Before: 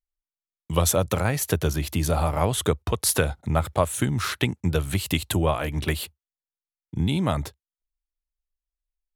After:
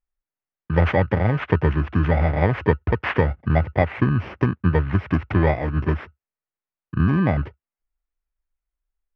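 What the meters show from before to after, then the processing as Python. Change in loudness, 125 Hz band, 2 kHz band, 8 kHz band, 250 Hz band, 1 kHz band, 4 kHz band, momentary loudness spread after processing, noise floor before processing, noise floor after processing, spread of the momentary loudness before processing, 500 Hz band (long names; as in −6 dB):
+3.0 dB, +5.5 dB, +4.5 dB, below −35 dB, +5.0 dB, +2.0 dB, −10.5 dB, 5 LU, below −85 dBFS, below −85 dBFS, 6 LU, +2.5 dB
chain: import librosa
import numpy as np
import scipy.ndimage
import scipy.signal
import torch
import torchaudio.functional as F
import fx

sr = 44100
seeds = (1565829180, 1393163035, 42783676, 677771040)

y = fx.bit_reversed(x, sr, seeds[0], block=32)
y = scipy.signal.sosfilt(scipy.signal.butter(4, 2200.0, 'lowpass', fs=sr, output='sos'), y)
y = F.gain(torch.from_numpy(y), 5.5).numpy()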